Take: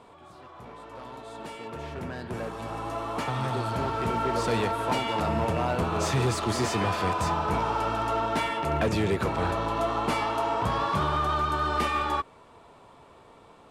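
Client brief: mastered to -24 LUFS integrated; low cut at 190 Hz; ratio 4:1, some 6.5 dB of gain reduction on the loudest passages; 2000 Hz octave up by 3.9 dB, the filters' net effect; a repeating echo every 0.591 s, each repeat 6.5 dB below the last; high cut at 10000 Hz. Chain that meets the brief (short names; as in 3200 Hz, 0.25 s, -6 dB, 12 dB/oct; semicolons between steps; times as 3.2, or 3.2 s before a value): HPF 190 Hz; LPF 10000 Hz; bell 2000 Hz +5 dB; compressor 4:1, threshold -30 dBFS; feedback echo 0.591 s, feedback 47%, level -6.5 dB; gain +8 dB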